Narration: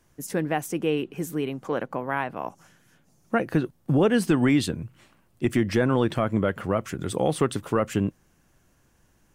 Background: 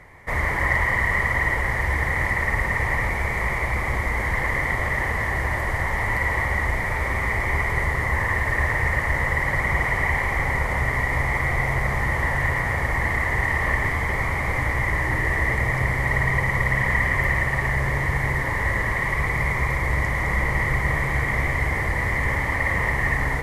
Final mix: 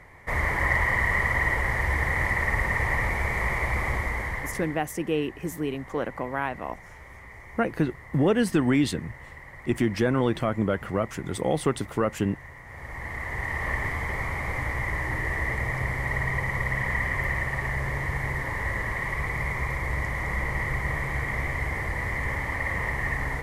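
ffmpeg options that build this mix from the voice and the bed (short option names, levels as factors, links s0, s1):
-filter_complex "[0:a]adelay=4250,volume=0.841[s0];[1:a]volume=4.73,afade=t=out:st=3.86:d=0.95:silence=0.105925,afade=t=in:st=12.64:d=1.11:silence=0.158489[s1];[s0][s1]amix=inputs=2:normalize=0"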